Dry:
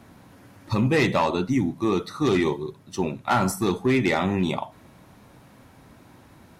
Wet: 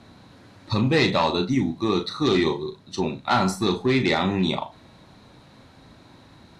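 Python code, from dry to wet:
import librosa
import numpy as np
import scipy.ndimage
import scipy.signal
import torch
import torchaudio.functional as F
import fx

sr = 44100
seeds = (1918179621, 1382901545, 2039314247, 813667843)

y = scipy.signal.sosfilt(scipy.signal.butter(2, 7400.0, 'lowpass', fs=sr, output='sos'), x)
y = fx.peak_eq(y, sr, hz=4000.0, db=12.0, octaves=0.29)
y = fx.doubler(y, sr, ms=37.0, db=-8.5)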